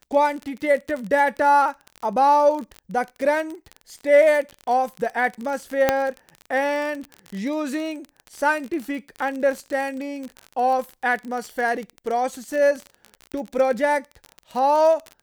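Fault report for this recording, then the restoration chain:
crackle 37/s -27 dBFS
5.89 pop -3 dBFS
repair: de-click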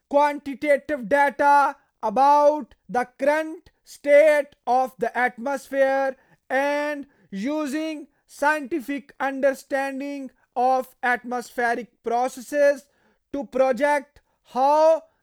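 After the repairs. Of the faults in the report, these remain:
5.89 pop

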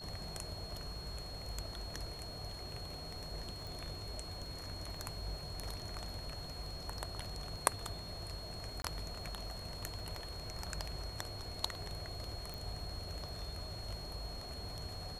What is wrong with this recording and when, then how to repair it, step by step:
crackle 44/s -51 dBFS
tone 4300 Hz -48 dBFS
3.67 pop
8.82–8.84 gap 22 ms
12.54 pop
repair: de-click; notch 4300 Hz, Q 30; interpolate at 8.82, 22 ms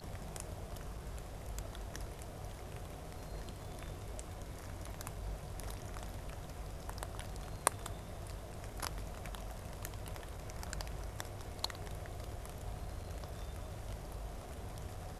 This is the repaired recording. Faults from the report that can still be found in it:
3.67 pop

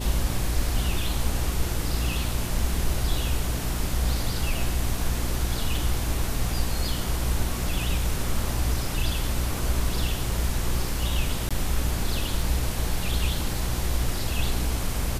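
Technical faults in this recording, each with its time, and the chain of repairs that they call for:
hum 60 Hz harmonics 6 -30 dBFS
11.49–11.51 gap 16 ms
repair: de-hum 60 Hz, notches 6; interpolate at 11.49, 16 ms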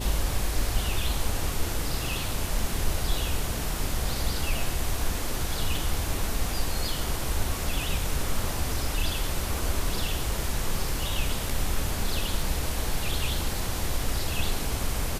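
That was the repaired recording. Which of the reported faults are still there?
none

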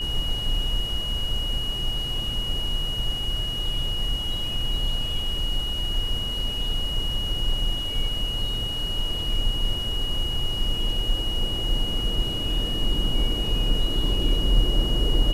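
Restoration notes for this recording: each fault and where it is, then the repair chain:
tone 2900 Hz -28 dBFS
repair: notch 2900 Hz, Q 30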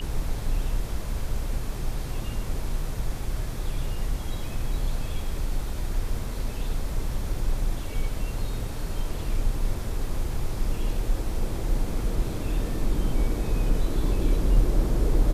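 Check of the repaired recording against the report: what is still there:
none

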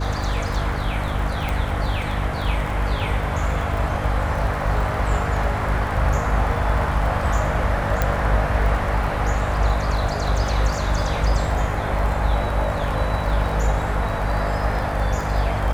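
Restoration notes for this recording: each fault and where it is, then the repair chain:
crackle 34/s -28 dBFS
hum 50 Hz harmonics 6 -26 dBFS
1.49 pop
8.02 pop -6 dBFS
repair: de-click; de-hum 50 Hz, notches 6

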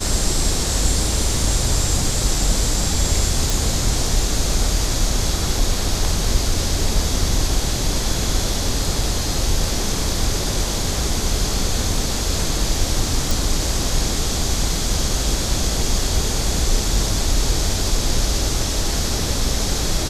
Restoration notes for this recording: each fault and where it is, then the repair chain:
3.5 pop
13.31 pop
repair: de-click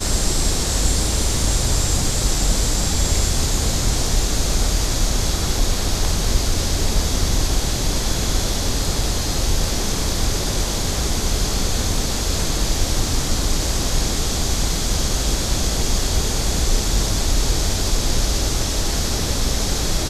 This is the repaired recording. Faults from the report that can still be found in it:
none

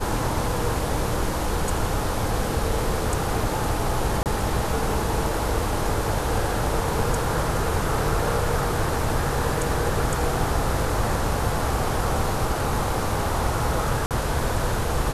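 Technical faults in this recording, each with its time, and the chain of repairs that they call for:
4.23–4.26 gap 28 ms
14.06–14.11 gap 48 ms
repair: interpolate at 4.23, 28 ms; interpolate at 14.06, 48 ms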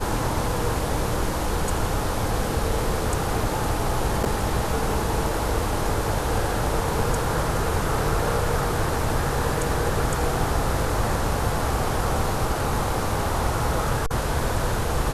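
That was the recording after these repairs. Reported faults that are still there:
none

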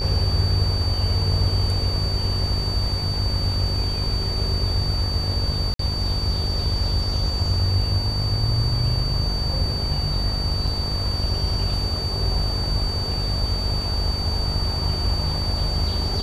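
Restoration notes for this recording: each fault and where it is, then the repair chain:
buzz 50 Hz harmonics 27 -27 dBFS
tone 4600 Hz -27 dBFS
5.74–5.79 gap 53 ms
10.67 gap 4.4 ms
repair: notch 4600 Hz, Q 30; de-hum 50 Hz, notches 27; interpolate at 5.74, 53 ms; interpolate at 10.67, 4.4 ms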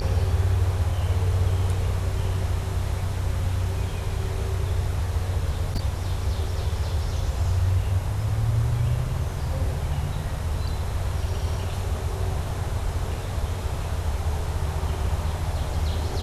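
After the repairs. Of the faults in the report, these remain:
none

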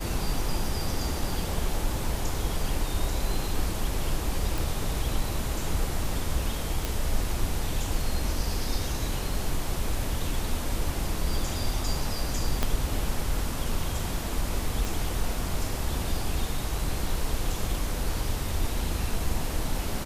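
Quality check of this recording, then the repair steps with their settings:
4.58 pop
6.85 pop
12.63 pop -10 dBFS
14.85 pop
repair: de-click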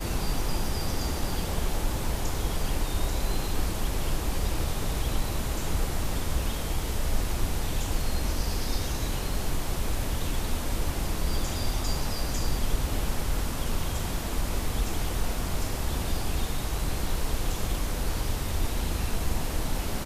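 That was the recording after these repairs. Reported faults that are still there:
12.63 pop
14.85 pop

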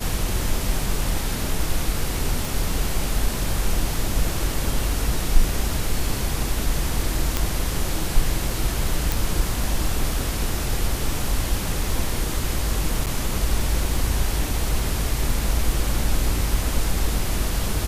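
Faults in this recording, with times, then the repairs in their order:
2.45 pop
7.37 pop
9.12 pop
13.06–13.07 gap 8.5 ms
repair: de-click; interpolate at 13.06, 8.5 ms

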